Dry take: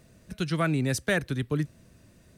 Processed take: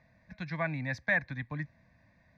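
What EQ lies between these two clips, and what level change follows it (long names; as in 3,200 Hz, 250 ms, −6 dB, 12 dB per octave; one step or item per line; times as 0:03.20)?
resonant band-pass 1,800 Hz, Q 1.4
spectral tilt −4 dB per octave
phaser with its sweep stopped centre 2,000 Hz, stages 8
+6.5 dB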